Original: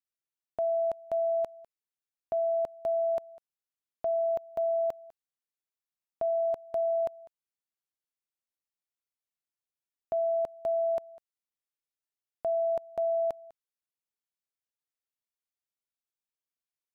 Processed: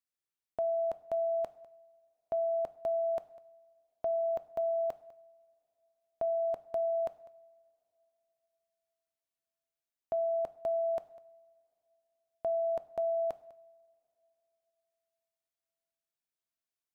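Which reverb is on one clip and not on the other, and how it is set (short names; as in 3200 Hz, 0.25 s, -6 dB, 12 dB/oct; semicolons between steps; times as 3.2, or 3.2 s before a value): two-slope reverb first 0.68 s, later 3.5 s, from -21 dB, DRR 14 dB; gain -1.5 dB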